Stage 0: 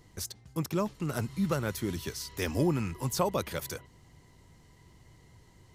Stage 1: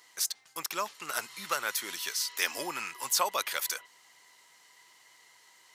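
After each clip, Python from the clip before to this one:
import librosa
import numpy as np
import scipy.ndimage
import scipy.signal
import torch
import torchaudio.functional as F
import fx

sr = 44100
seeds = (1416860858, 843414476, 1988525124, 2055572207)

y = scipy.signal.sosfilt(scipy.signal.butter(2, 1200.0, 'highpass', fs=sr, output='sos'), x)
y = y * 10.0 ** (8.0 / 20.0)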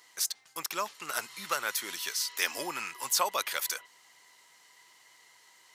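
y = x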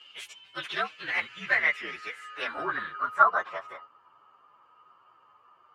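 y = fx.partial_stretch(x, sr, pct=118)
y = fx.filter_sweep_lowpass(y, sr, from_hz=3100.0, to_hz=1100.0, start_s=0.54, end_s=3.64, q=3.6)
y = y * 10.0 ** (6.0 / 20.0)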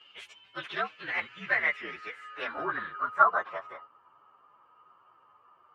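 y = fx.lowpass(x, sr, hz=2100.0, slope=6)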